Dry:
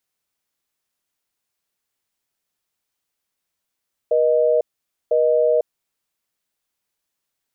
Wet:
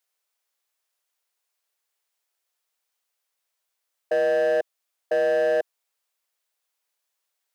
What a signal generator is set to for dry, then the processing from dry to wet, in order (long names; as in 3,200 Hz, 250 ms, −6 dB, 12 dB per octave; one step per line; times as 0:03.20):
call progress tone busy tone, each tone −16.5 dBFS 1.63 s
high-pass filter 450 Hz 24 dB per octave
gain into a clipping stage and back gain 18.5 dB